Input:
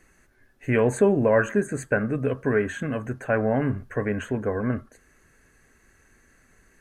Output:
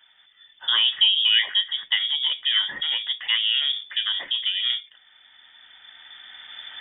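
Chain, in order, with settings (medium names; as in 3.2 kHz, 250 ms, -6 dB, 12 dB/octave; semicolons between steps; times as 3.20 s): recorder AGC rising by 9.1 dB/s; 1.68–4.31 s: crackle 280 per s -48 dBFS; frequency inversion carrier 3.5 kHz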